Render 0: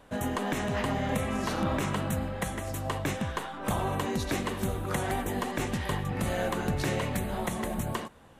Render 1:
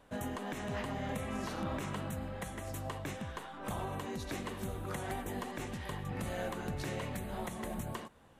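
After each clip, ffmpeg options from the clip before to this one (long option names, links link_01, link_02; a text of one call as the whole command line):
ffmpeg -i in.wav -af "alimiter=limit=-21.5dB:level=0:latency=1:release=245,volume=-6.5dB" out.wav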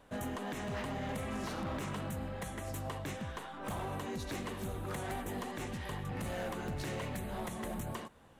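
ffmpeg -i in.wav -af "asoftclip=type=hard:threshold=-35dB,volume=1dB" out.wav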